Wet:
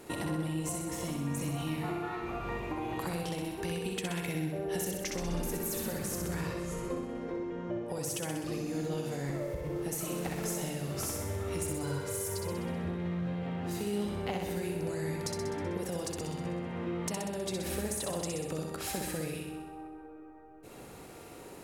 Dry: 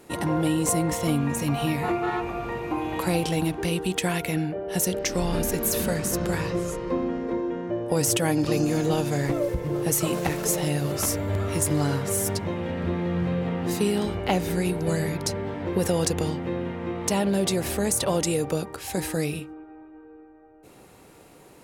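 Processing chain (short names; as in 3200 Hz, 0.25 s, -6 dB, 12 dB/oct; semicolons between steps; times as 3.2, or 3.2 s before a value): 11.83–12.52 comb 2 ms, depth 82%; compressor 10:1, threshold -34 dBFS, peak gain reduction 16 dB; on a send: flutter echo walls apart 10.9 m, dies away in 1 s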